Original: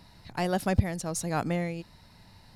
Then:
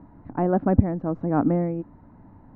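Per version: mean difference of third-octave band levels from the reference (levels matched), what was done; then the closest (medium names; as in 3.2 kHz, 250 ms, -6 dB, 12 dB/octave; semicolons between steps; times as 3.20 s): 10.0 dB: low-pass 1.3 kHz 24 dB/octave; peaking EQ 280 Hz +14.5 dB 0.51 oct; trim +4 dB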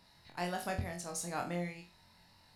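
4.5 dB: bass shelf 410 Hz -8.5 dB; on a send: flutter echo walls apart 3.9 m, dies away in 0.33 s; on the sum: trim -7.5 dB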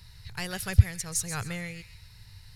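6.5 dB: FFT filter 110 Hz 0 dB, 280 Hz -29 dB, 430 Hz -13 dB, 640 Hz -23 dB, 1.6 kHz -7 dB, 13 kHz -1 dB; on a send: feedback echo behind a high-pass 133 ms, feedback 33%, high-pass 1.6 kHz, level -10.5 dB; on the sum: trim +7.5 dB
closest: second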